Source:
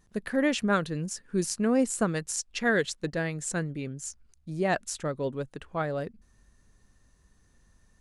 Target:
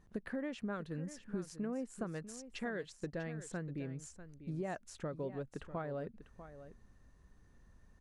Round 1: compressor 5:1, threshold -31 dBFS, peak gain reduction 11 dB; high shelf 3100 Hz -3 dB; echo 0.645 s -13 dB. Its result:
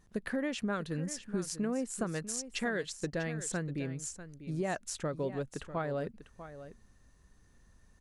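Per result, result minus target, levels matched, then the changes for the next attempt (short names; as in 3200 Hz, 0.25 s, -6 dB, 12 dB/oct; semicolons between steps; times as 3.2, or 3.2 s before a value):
8000 Hz band +7.5 dB; compressor: peak gain reduction -5.5 dB
change: high shelf 3100 Hz -13.5 dB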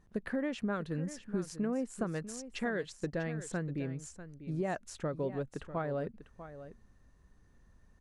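compressor: peak gain reduction -5.5 dB
change: compressor 5:1, threshold -38 dBFS, peak gain reduction 16.5 dB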